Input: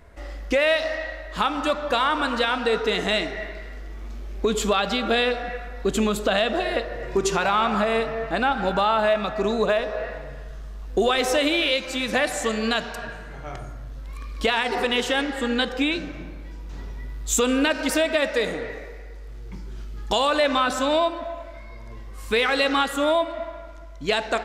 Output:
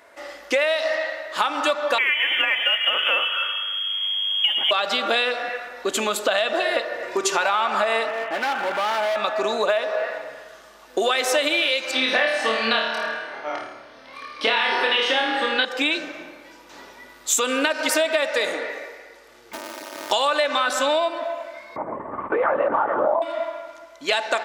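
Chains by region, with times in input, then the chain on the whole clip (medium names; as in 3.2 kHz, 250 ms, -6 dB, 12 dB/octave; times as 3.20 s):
1.98–4.71 s: frequency inversion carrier 3.3 kHz + companded quantiser 8-bit
8.09–9.16 s: CVSD coder 16 kbps + overload inside the chain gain 26 dB
11.91–15.65 s: Savitzky-Golay filter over 15 samples + flutter echo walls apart 4.6 m, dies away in 0.59 s
19.53–20.11 s: square wave that keeps the level + hum notches 50/100/150/200/250/300/350/400/450 Hz + comb 3.2 ms, depth 91%
21.76–23.22 s: low-pass 1.2 kHz 24 dB/octave + LPC vocoder at 8 kHz whisper + level flattener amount 70%
whole clip: high-pass 530 Hz 12 dB/octave; comb 3.4 ms, depth 31%; compression, threshold -23 dBFS; trim +6 dB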